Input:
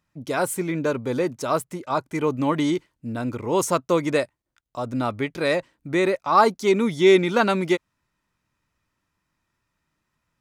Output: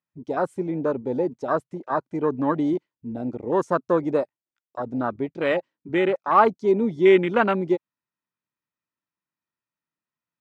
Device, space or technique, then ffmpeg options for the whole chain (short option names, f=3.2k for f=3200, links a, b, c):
over-cleaned archive recording: -af "highpass=160,lowpass=5.7k,afwtdn=0.0501"